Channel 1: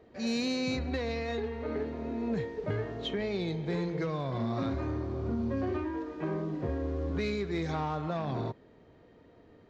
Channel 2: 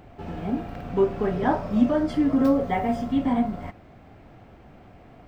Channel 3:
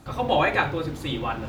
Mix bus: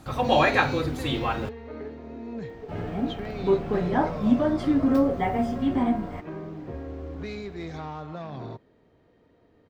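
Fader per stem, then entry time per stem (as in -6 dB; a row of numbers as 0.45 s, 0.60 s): -3.5 dB, -1.0 dB, +1.0 dB; 0.05 s, 2.50 s, 0.00 s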